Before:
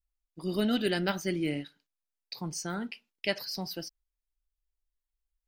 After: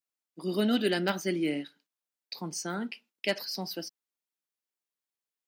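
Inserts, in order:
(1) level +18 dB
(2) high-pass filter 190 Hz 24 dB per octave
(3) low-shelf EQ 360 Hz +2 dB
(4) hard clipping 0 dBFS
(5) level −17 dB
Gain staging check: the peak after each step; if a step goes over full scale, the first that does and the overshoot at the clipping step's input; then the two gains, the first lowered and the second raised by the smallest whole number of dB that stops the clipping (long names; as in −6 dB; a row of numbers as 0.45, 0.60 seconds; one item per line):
+5.0, +4.5, +4.5, 0.0, −17.0 dBFS
step 1, 4.5 dB
step 1 +13 dB, step 5 −12 dB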